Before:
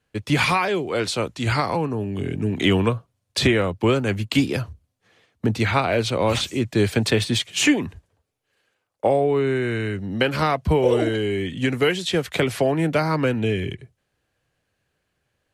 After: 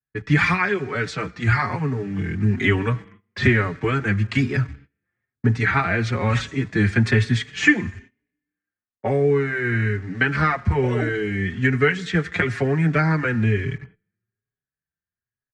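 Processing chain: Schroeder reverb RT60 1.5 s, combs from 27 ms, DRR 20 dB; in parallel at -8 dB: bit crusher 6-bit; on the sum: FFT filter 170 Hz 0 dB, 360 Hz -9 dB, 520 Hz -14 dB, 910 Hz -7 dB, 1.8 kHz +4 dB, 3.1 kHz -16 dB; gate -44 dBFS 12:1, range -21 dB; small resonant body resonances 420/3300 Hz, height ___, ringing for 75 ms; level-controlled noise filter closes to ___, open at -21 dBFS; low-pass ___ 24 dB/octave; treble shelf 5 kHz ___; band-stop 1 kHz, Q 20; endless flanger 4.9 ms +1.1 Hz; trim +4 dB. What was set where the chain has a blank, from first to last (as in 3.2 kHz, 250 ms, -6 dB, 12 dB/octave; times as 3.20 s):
8 dB, 2.1 kHz, 7.1 kHz, +10.5 dB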